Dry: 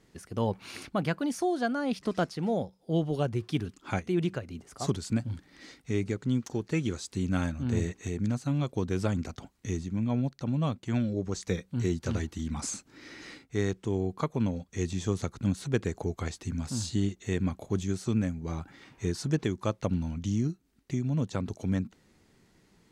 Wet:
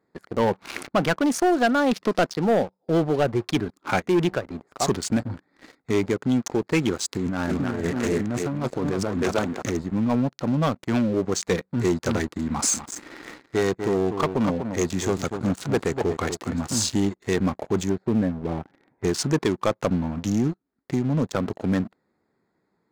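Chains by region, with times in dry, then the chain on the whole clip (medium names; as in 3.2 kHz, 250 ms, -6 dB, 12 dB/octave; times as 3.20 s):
7.08–9.77 s: thinning echo 310 ms, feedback 19%, high-pass 270 Hz, level -3.5 dB + compressor with a negative ratio -32 dBFS + loudspeaker Doppler distortion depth 0.19 ms
12.52–16.75 s: overload inside the chain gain 22.5 dB + delay 245 ms -9 dB
17.89–19.04 s: low-pass 1.7 kHz + peaking EQ 1.2 kHz -11.5 dB 0.49 oct
whole clip: local Wiener filter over 15 samples; high-pass 460 Hz 6 dB/octave; waveshaping leveller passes 3; trim +4 dB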